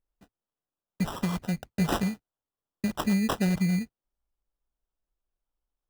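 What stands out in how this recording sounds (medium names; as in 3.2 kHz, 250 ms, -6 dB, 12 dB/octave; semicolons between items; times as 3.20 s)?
phasing stages 12, 1.6 Hz, lowest notch 760–2900 Hz; aliases and images of a low sample rate 2.2 kHz, jitter 0%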